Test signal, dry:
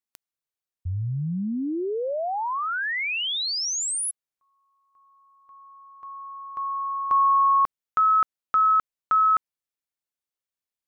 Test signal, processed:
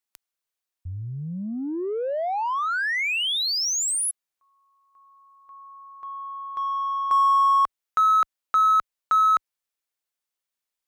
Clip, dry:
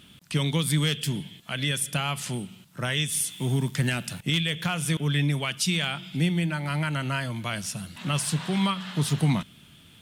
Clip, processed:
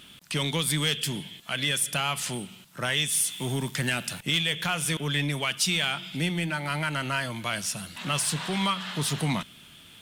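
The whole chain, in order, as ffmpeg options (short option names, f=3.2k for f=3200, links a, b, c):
-filter_complex "[0:a]equalizer=f=110:w=0.4:g=-9,asplit=2[a][b];[b]asoftclip=type=tanh:threshold=-32dB,volume=-3.5dB[c];[a][c]amix=inputs=2:normalize=0"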